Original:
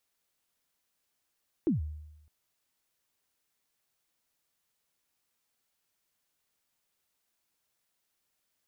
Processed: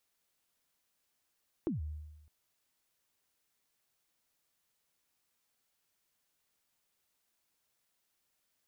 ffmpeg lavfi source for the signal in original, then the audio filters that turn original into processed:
-f lavfi -i "aevalsrc='0.0841*pow(10,-3*t/0.94)*sin(2*PI*(370*0.137/log(76/370)*(exp(log(76/370)*min(t,0.137)/0.137)-1)+76*max(t-0.137,0)))':d=0.61:s=44100"
-af "acompressor=threshold=-34dB:ratio=6"

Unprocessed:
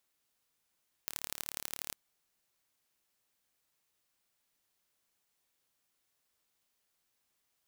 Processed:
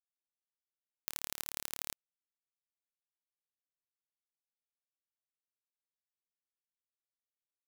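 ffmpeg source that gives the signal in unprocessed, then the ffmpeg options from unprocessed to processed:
-f lavfi -i "aevalsrc='0.376*eq(mod(n,1205),0)*(0.5+0.5*eq(mod(n,3615),0))':d=0.86:s=44100"
-af "acrusher=bits=7:mix=0:aa=0.5"

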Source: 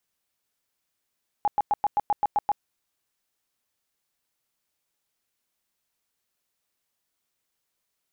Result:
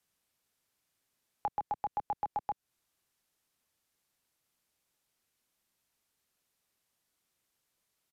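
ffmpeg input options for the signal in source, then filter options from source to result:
-f lavfi -i "aevalsrc='0.119*sin(2*PI*828*mod(t,0.13))*lt(mod(t,0.13),23/828)':d=1.17:s=44100"
-filter_complex "[0:a]equalizer=f=130:t=o:w=2.6:g=3.5,acrossover=split=210|430[a][b][c];[a]acompressor=threshold=-52dB:ratio=4[d];[b]acompressor=threshold=-55dB:ratio=4[e];[c]acompressor=threshold=-34dB:ratio=4[f];[d][e][f]amix=inputs=3:normalize=0,aresample=32000,aresample=44100"

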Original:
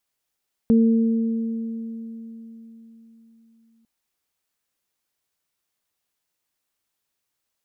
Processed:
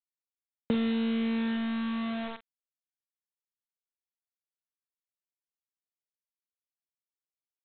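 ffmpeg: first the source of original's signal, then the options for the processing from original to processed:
-f lavfi -i "aevalsrc='0.251*pow(10,-3*t/4.08)*sin(2*PI*227*t)+0.0794*pow(10,-3*t/2.77)*sin(2*PI*454*t)':d=3.15:s=44100"
-filter_complex "[0:a]acrossover=split=98|460[a][b][c];[a]acompressor=threshold=-59dB:ratio=4[d];[b]acompressor=threshold=-30dB:ratio=4[e];[c]acompressor=threshold=-37dB:ratio=4[f];[d][e][f]amix=inputs=3:normalize=0,aresample=8000,acrusher=bits=5:mix=0:aa=0.000001,aresample=44100,asplit=2[g][h];[h]adelay=43,volume=-12.5dB[i];[g][i]amix=inputs=2:normalize=0"

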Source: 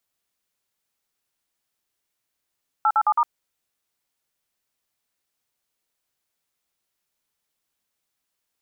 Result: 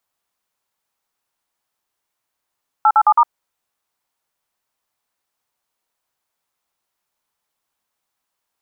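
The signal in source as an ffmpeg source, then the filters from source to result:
-f lavfi -i "aevalsrc='0.126*clip(min(mod(t,0.108),0.057-mod(t,0.108))/0.002,0,1)*(eq(floor(t/0.108),0)*(sin(2*PI*852*mod(t,0.108))+sin(2*PI*1336*mod(t,0.108)))+eq(floor(t/0.108),1)*(sin(2*PI*852*mod(t,0.108))+sin(2*PI*1336*mod(t,0.108)))+eq(floor(t/0.108),2)*(sin(2*PI*852*mod(t,0.108))+sin(2*PI*1209*mod(t,0.108)))+eq(floor(t/0.108),3)*(sin(2*PI*941*mod(t,0.108))+sin(2*PI*1209*mod(t,0.108))))':d=0.432:s=44100"
-af "equalizer=f=950:t=o:w=1.3:g=8.5"

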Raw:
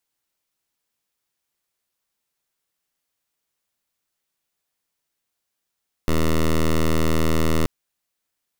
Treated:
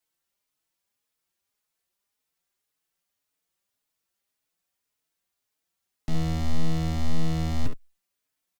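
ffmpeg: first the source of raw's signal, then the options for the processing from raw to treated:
-f lavfi -i "aevalsrc='0.133*(2*lt(mod(80.1*t,1),0.1)-1)':d=1.58:s=44100"
-filter_complex "[0:a]aecho=1:1:11|69:0.299|0.178,acrossover=split=230[a][b];[b]aeval=exprs='0.0376*(abs(mod(val(0)/0.0376+3,4)-2)-1)':c=same[c];[a][c]amix=inputs=2:normalize=0,asplit=2[d][e];[e]adelay=4.2,afreqshift=1.8[f];[d][f]amix=inputs=2:normalize=1"

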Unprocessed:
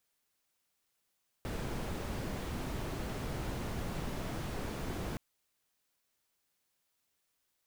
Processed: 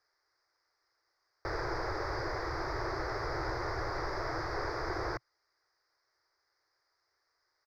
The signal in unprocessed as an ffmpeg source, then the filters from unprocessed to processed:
-f lavfi -i "anoisesrc=c=brown:a=0.0624:d=3.72:r=44100:seed=1"
-af "firequalizer=gain_entry='entry(120,0);entry(210,-28);entry(330,6);entry(620,6);entry(1200,11);entry(2000,9);entry(2900,-21);entry(4900,12);entry(7500,-19)':delay=0.05:min_phase=1"

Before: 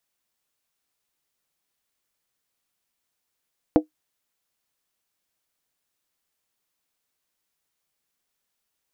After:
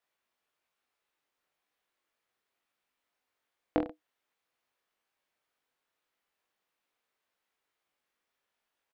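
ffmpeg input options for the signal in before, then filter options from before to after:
-f lavfi -i "aevalsrc='0.376*pow(10,-3*t/0.12)*sin(2*PI*308*t)+0.211*pow(10,-3*t/0.095)*sin(2*PI*491*t)+0.119*pow(10,-3*t/0.082)*sin(2*PI*657.9*t)+0.0668*pow(10,-3*t/0.079)*sin(2*PI*707.2*t)+0.0376*pow(10,-3*t/0.074)*sin(2*PI*817.1*t)':d=0.63:s=44100"
-af "bass=f=250:g=-10,treble=f=4k:g=-14,acompressor=threshold=-30dB:ratio=2.5,aecho=1:1:20|43|69.45|99.87|134.8:0.631|0.398|0.251|0.158|0.1"

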